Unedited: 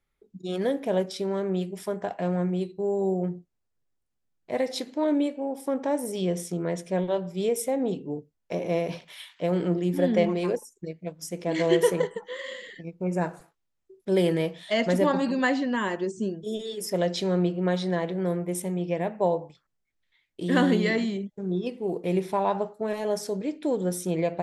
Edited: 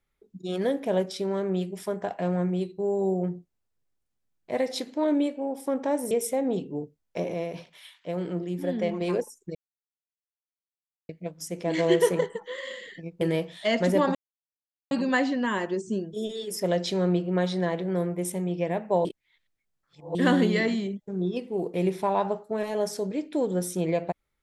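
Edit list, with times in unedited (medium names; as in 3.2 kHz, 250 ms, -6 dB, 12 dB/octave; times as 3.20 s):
6.11–7.46 s: delete
8.69–10.36 s: gain -5.5 dB
10.90 s: insert silence 1.54 s
13.02–14.27 s: delete
15.21 s: insert silence 0.76 s
19.35–20.45 s: reverse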